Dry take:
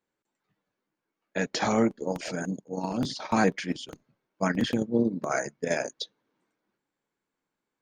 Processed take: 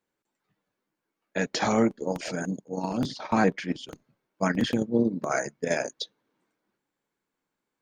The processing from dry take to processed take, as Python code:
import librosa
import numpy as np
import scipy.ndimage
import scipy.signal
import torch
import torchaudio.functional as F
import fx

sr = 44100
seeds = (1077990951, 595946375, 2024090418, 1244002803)

y = fx.high_shelf(x, sr, hz=4800.0, db=-9.5, at=(3.06, 3.84))
y = y * librosa.db_to_amplitude(1.0)